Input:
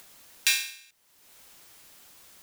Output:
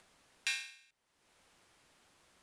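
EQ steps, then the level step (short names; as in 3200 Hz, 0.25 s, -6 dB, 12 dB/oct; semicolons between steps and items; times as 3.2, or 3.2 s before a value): Chebyshev low-pass 9700 Hz, order 3; high shelf 4100 Hz -11.5 dB; -6.5 dB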